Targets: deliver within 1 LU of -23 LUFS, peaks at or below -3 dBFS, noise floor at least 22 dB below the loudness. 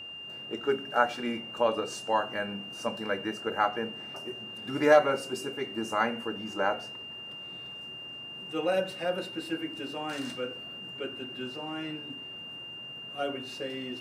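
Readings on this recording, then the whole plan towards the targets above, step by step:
steady tone 2800 Hz; tone level -40 dBFS; loudness -32.0 LUFS; peak -8.5 dBFS; loudness target -23.0 LUFS
-> notch 2800 Hz, Q 30; gain +9 dB; limiter -3 dBFS

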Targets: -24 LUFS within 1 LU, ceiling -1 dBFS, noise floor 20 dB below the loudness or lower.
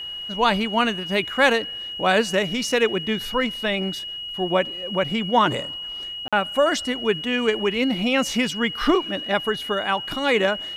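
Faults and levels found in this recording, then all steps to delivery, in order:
dropouts 1; longest dropout 46 ms; steady tone 2900 Hz; tone level -30 dBFS; loudness -22.5 LUFS; peak -4.5 dBFS; loudness target -24.0 LUFS
-> interpolate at 6.28, 46 ms; notch 2900 Hz, Q 30; gain -1.5 dB

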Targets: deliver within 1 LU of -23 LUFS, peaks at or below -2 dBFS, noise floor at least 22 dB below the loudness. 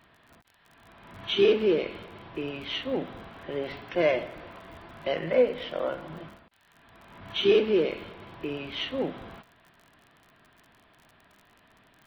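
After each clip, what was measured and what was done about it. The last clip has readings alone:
ticks 42/s; loudness -28.0 LUFS; peak -11.5 dBFS; loudness target -23.0 LUFS
-> de-click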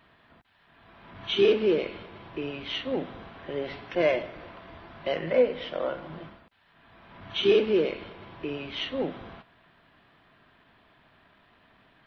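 ticks 0/s; loudness -28.0 LUFS; peak -11.5 dBFS; loudness target -23.0 LUFS
-> gain +5 dB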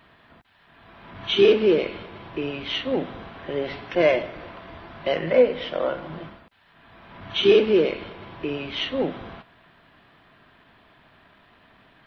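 loudness -23.0 LUFS; peak -6.5 dBFS; noise floor -57 dBFS

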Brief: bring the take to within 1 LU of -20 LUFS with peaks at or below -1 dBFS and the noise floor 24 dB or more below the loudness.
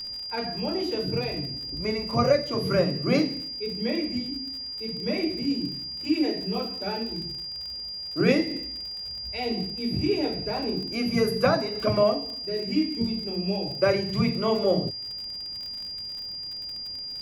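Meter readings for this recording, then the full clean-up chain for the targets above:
ticks 55/s; steady tone 4800 Hz; tone level -33 dBFS; loudness -27.0 LUFS; peak -9.0 dBFS; loudness target -20.0 LUFS
-> de-click; notch 4800 Hz, Q 30; gain +7 dB

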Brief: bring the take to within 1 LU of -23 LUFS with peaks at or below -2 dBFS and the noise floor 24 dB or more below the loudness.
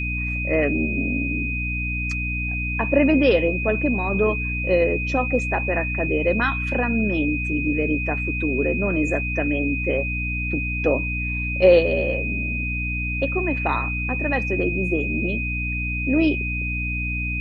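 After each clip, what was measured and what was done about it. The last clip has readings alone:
hum 60 Hz; harmonics up to 300 Hz; hum level -25 dBFS; steady tone 2500 Hz; tone level -26 dBFS; loudness -22.0 LUFS; peak -3.0 dBFS; loudness target -23.0 LUFS
-> de-hum 60 Hz, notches 5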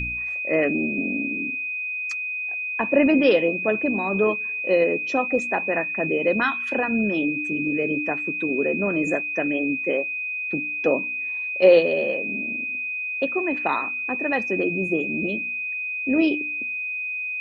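hum none; steady tone 2500 Hz; tone level -26 dBFS
-> notch 2500 Hz, Q 30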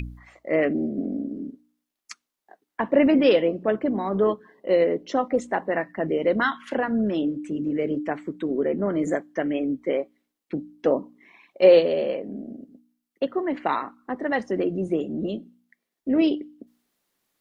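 steady tone none; loudness -24.5 LUFS; peak -4.5 dBFS; loudness target -23.0 LUFS
-> gain +1.5 dB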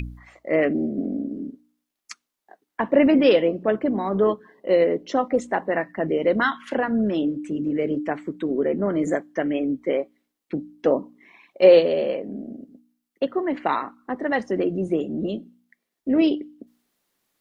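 loudness -23.0 LUFS; peak -3.0 dBFS; noise floor -82 dBFS

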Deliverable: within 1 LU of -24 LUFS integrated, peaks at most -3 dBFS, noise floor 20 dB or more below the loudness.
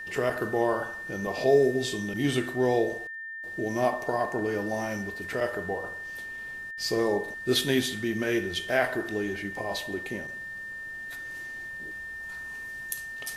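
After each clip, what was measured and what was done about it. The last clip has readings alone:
ticks 20/s; steady tone 1800 Hz; tone level -36 dBFS; loudness -29.5 LUFS; peak -11.0 dBFS; loudness target -24.0 LUFS
-> de-click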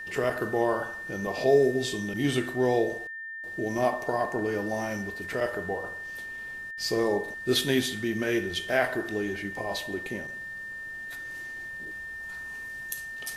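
ticks 0/s; steady tone 1800 Hz; tone level -36 dBFS
-> notch 1800 Hz, Q 30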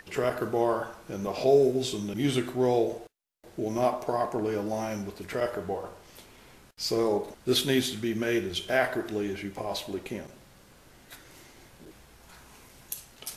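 steady tone none; loudness -29.0 LUFS; peak -11.5 dBFS; loudness target -24.0 LUFS
-> gain +5 dB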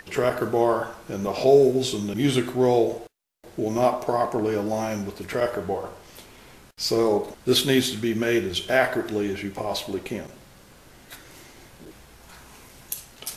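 loudness -24.0 LUFS; peak -6.5 dBFS; noise floor -51 dBFS

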